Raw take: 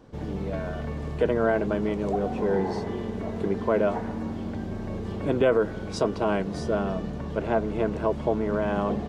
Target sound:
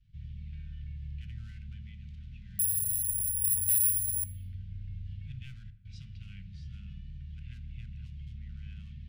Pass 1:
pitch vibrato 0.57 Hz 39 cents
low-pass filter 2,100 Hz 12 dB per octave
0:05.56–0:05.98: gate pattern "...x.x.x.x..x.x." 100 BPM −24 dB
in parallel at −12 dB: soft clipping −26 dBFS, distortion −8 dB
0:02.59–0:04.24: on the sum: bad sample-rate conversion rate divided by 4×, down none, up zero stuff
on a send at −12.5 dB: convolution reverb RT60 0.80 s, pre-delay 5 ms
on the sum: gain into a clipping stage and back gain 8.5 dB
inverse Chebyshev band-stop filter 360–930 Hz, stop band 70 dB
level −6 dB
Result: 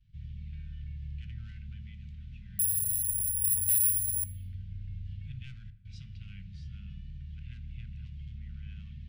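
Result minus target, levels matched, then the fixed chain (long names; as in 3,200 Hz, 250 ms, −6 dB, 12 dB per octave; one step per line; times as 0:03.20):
soft clipping: distortion −4 dB
pitch vibrato 0.57 Hz 39 cents
low-pass filter 2,100 Hz 12 dB per octave
0:05.56–0:05.98: gate pattern "...x.x.x.x..x.x." 100 BPM −24 dB
in parallel at −12 dB: soft clipping −33.5 dBFS, distortion −4 dB
0:02.59–0:04.24: on the sum: bad sample-rate conversion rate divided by 4×, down none, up zero stuff
on a send at −12.5 dB: convolution reverb RT60 0.80 s, pre-delay 5 ms
on the sum: gain into a clipping stage and back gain 8.5 dB
inverse Chebyshev band-stop filter 360–930 Hz, stop band 70 dB
level −6 dB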